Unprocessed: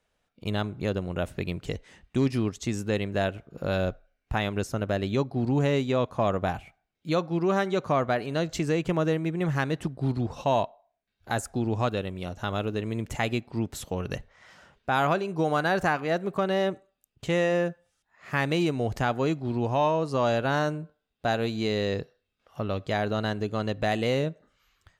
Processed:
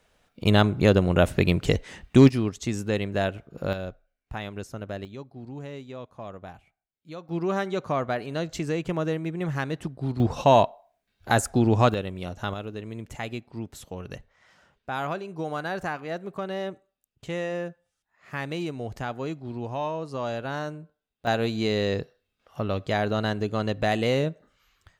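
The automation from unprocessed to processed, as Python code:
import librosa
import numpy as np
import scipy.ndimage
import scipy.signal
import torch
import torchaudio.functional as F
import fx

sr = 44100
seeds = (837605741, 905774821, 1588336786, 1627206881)

y = fx.gain(x, sr, db=fx.steps((0.0, 10.0), (2.29, 1.0), (3.73, -7.0), (5.05, -14.0), (7.29, -2.0), (10.2, 7.0), (11.94, 0.5), (12.54, -6.0), (21.27, 2.0)))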